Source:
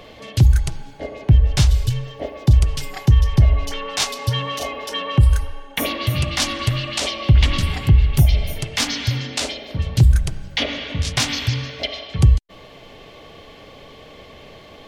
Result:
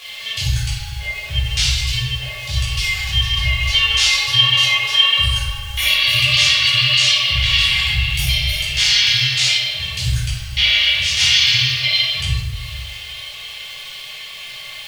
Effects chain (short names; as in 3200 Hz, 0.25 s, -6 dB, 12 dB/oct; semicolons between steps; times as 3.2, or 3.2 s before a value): weighting filter D; crackle 320/s -29 dBFS; harmonic-percussive split percussive -12 dB; limiter -12.5 dBFS, peak gain reduction 6.5 dB; passive tone stack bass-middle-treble 10-0-10; reverb RT60 0.95 s, pre-delay 8 ms, DRR -8 dB; gain +1 dB